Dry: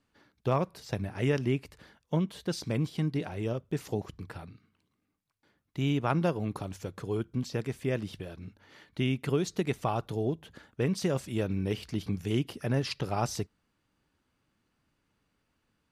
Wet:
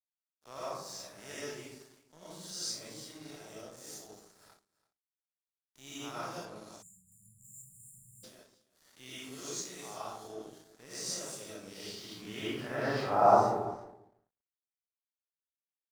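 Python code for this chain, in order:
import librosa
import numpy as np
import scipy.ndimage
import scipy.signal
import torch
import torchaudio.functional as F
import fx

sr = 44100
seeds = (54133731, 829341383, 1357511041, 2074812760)

y = fx.spec_blur(x, sr, span_ms=105.0)
y = fx.filter_sweep_bandpass(y, sr, from_hz=6500.0, to_hz=610.0, start_s=11.56, end_s=13.61, q=1.3)
y = fx.rev_freeverb(y, sr, rt60_s=0.91, hf_ratio=0.3, predelay_ms=65, drr_db=-9.0)
y = np.sign(y) * np.maximum(np.abs(y) - 10.0 ** (-60.0 / 20.0), 0.0)
y = fx.peak_eq(y, sr, hz=2700.0, db=-11.0, octaves=1.1)
y = y + 10.0 ** (-20.0 / 20.0) * np.pad(y, (int(335 * sr / 1000.0), 0))[:len(y)]
y = fx.spec_erase(y, sr, start_s=6.82, length_s=1.42, low_hz=210.0, high_hz=6900.0)
y = fx.high_shelf(y, sr, hz=11000.0, db=-11.0, at=(6.45, 7.12))
y = y * 10.0 ** (7.0 / 20.0)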